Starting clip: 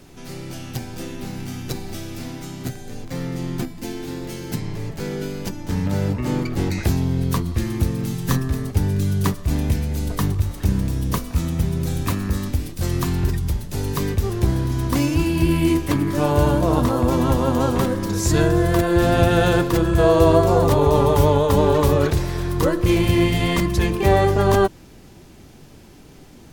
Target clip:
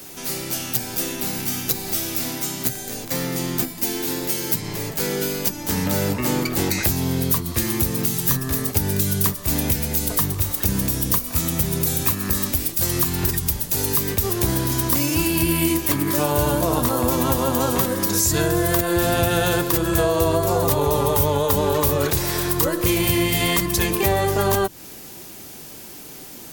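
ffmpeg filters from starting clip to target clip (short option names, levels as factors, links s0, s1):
-filter_complex "[0:a]aemphasis=mode=production:type=bsi,acrossover=split=150[s0][s1];[s1]acompressor=threshold=0.0631:ratio=5[s2];[s0][s2]amix=inputs=2:normalize=0,volume=2"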